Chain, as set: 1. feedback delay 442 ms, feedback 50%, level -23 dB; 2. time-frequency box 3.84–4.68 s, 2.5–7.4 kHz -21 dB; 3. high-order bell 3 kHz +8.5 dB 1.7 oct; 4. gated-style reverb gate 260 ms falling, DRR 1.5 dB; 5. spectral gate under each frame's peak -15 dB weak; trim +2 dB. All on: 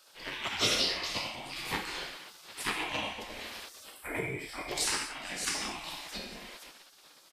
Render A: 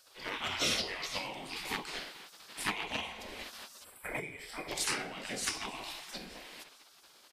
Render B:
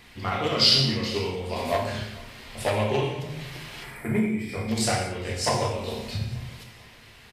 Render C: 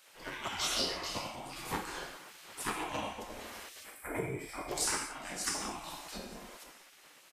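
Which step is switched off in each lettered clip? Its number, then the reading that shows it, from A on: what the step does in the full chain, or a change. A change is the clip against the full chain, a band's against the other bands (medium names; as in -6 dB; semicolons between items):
4, loudness change -3.0 LU; 5, 125 Hz band +11.0 dB; 3, 4 kHz band -5.0 dB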